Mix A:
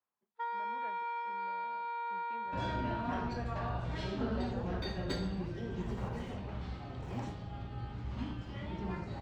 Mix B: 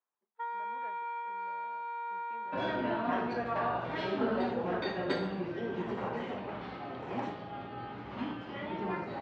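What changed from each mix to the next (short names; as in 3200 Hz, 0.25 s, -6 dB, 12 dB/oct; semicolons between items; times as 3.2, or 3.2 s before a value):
second sound +8.0 dB; master: add BPF 290–2800 Hz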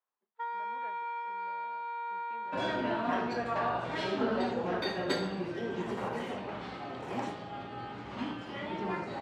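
master: remove air absorption 170 m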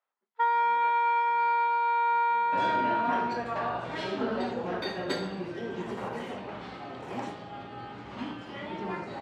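first sound +12.0 dB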